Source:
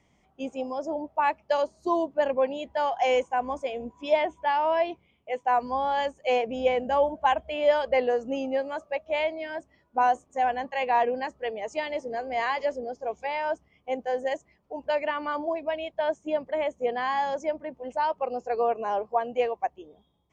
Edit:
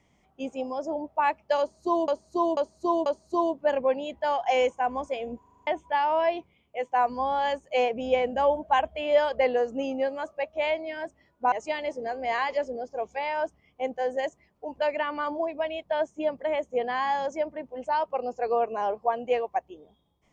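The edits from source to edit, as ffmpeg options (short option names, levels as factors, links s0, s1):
-filter_complex "[0:a]asplit=12[s0][s1][s2][s3][s4][s5][s6][s7][s8][s9][s10][s11];[s0]atrim=end=2.082[s12];[s1]atrim=start=1.588:end=2.082[s13];[s2]atrim=start=1.588:end=2.082[s14];[s3]atrim=start=1.588:end=3.962[s15];[s4]atrim=start=3.918:end=3.962[s16];[s5]atrim=start=3.918:end=3.962[s17];[s6]atrim=start=3.918:end=3.962[s18];[s7]atrim=start=3.918:end=3.962[s19];[s8]atrim=start=3.918:end=3.962[s20];[s9]atrim=start=3.918:end=3.962[s21];[s10]atrim=start=4.198:end=10.052[s22];[s11]atrim=start=11.598[s23];[s12][s13]acrossfade=d=0.004:c1=hsin:c2=hsin[s24];[s24][s14]acrossfade=d=0.004:c1=hsin:c2=hsin[s25];[s25][s15]acrossfade=d=0.004:c1=hsin:c2=hsin[s26];[s26][s16]acrossfade=d=0.004:c1=hsin:c2=hsin[s27];[s27][s17]acrossfade=d=0.004:c1=hsin:c2=hsin[s28];[s28][s18]acrossfade=d=0.004:c1=hsin:c2=hsin[s29];[s29][s19]acrossfade=d=0.004:c1=hsin:c2=hsin[s30];[s30][s20]acrossfade=d=0.004:c1=hsin:c2=hsin[s31];[s31][s21]acrossfade=d=0.004:c1=hsin:c2=hsin[s32];[s32][s22]acrossfade=d=0.004:c1=hsin:c2=hsin[s33];[s33][s23]acrossfade=d=0.004:c1=hsin:c2=hsin"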